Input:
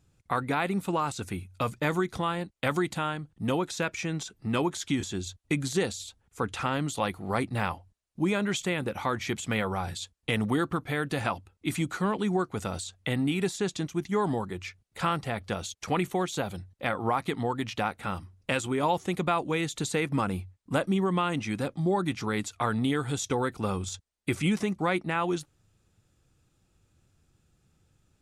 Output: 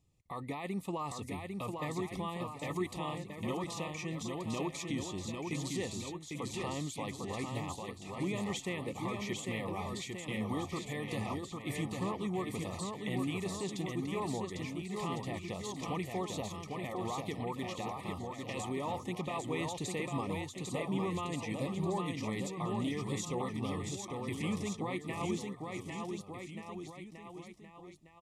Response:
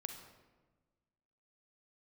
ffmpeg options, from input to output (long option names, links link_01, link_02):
-af "alimiter=limit=-20dB:level=0:latency=1:release=23,asuperstop=centerf=1500:order=20:qfactor=3.1,aecho=1:1:800|1480|2058|2549|2967:0.631|0.398|0.251|0.158|0.1,volume=-8dB"